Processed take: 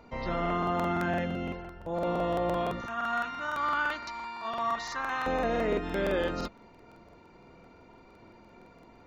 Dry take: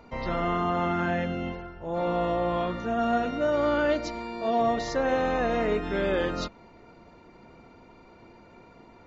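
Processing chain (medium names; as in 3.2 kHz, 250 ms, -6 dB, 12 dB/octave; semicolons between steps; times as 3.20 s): 2.81–5.23 s: resonant low shelf 750 Hz -11.5 dB, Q 3; crackling interface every 0.17 s, samples 2048, repeat, from 0.41 s; trim -2.5 dB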